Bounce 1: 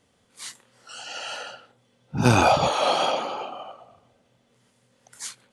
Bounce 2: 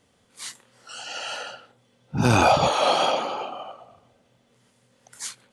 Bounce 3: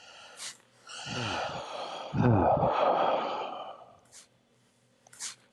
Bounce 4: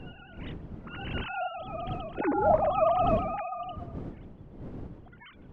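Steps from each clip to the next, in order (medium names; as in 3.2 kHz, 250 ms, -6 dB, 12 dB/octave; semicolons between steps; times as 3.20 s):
loudness maximiser +8 dB; trim -6.5 dB
reverse echo 1077 ms -14 dB; low-pass that closes with the level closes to 730 Hz, closed at -14.5 dBFS; trim -4 dB
formants replaced by sine waves; wind noise 230 Hz -39 dBFS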